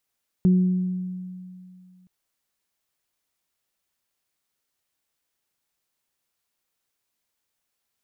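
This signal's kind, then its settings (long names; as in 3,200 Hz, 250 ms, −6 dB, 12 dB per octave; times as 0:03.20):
harmonic partials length 1.62 s, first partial 183 Hz, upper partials −14 dB, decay 2.45 s, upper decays 1.14 s, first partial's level −13 dB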